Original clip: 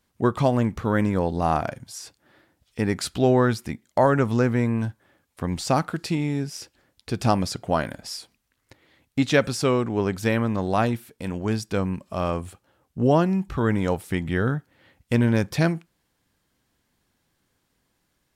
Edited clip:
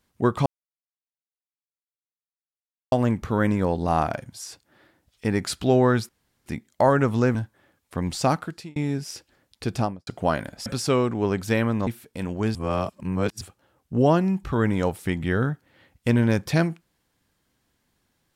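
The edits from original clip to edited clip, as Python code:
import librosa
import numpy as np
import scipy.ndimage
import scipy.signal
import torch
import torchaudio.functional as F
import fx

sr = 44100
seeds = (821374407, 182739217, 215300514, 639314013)

y = fx.studio_fade_out(x, sr, start_s=7.13, length_s=0.4)
y = fx.edit(y, sr, fx.insert_silence(at_s=0.46, length_s=2.46),
    fx.insert_room_tone(at_s=3.63, length_s=0.37),
    fx.cut(start_s=4.52, length_s=0.29),
    fx.fade_out_span(start_s=5.77, length_s=0.45),
    fx.cut(start_s=8.12, length_s=1.29),
    fx.cut(start_s=10.62, length_s=0.3),
    fx.reverse_span(start_s=11.6, length_s=0.86), tone=tone)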